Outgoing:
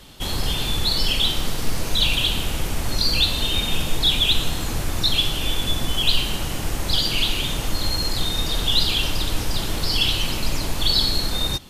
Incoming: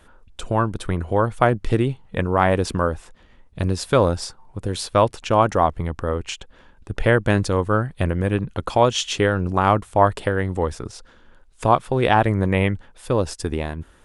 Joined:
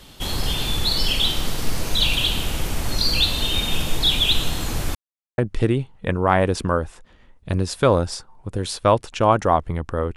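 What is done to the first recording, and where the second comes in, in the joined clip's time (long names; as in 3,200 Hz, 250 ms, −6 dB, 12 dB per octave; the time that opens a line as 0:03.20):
outgoing
0:04.95–0:05.38: silence
0:05.38: continue with incoming from 0:01.48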